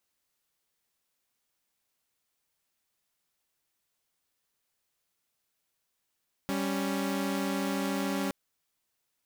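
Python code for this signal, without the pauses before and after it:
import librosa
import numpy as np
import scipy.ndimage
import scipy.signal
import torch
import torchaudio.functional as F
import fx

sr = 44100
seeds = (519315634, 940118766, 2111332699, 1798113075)

y = fx.chord(sr, length_s=1.82, notes=(55, 61), wave='saw', level_db=-29.0)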